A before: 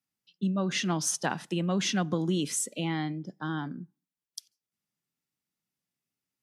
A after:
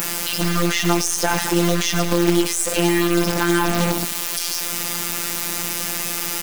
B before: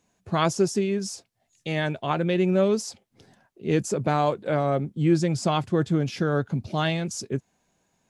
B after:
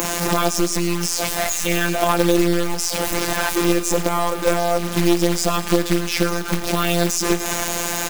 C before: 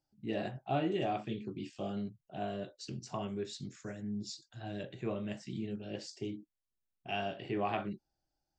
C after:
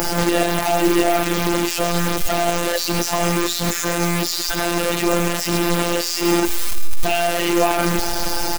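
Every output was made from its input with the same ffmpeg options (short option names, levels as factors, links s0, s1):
-filter_complex "[0:a]aeval=exprs='val(0)+0.5*0.0422*sgn(val(0))':c=same,aeval=exprs='0.355*(cos(1*acos(clip(val(0)/0.355,-1,1)))-cos(1*PI/2))+0.0562*(cos(4*acos(clip(val(0)/0.355,-1,1)))-cos(4*PI/2))':c=same,adynamicequalizer=threshold=0.00631:dfrequency=4000:dqfactor=1.5:tfrequency=4000:tqfactor=1.5:attack=5:release=100:ratio=0.375:range=1.5:mode=cutabove:tftype=bell,acompressor=threshold=0.0224:ratio=20,afftfilt=real='hypot(re,im)*cos(PI*b)':imag='0':win_size=1024:overlap=0.75,acrusher=bits=3:mode=log:mix=0:aa=0.000001,equalizer=f=150:t=o:w=0.73:g=-11,asplit=2[s0][s1];[s1]aecho=0:1:107|214|321|428|535|642:0.15|0.0883|0.0521|0.0307|0.0181|0.0107[s2];[s0][s2]amix=inputs=2:normalize=0,alimiter=level_in=18.8:limit=0.891:release=50:level=0:latency=1,volume=0.891"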